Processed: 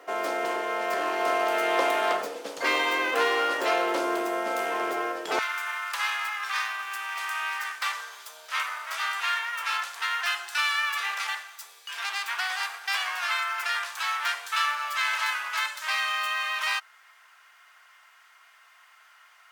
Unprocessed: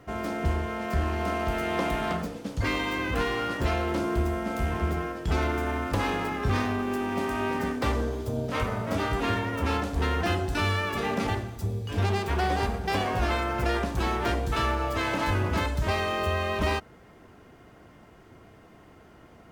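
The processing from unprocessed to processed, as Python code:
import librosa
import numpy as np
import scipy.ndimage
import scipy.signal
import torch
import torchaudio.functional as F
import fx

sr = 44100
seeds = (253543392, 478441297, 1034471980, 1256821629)

y = fx.highpass(x, sr, hz=fx.steps((0.0, 420.0), (5.39, 1200.0)), slope=24)
y = y * 10.0 ** (5.5 / 20.0)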